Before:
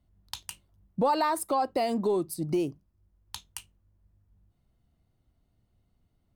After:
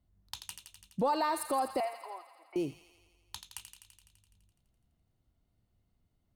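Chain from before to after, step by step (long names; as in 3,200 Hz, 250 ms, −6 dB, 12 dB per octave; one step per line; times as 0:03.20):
0:01.80–0:02.56: elliptic band-pass filter 680–2,400 Hz, stop band 60 dB
delay with a high-pass on its return 84 ms, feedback 72%, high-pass 1,400 Hz, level −8 dB
level −4.5 dB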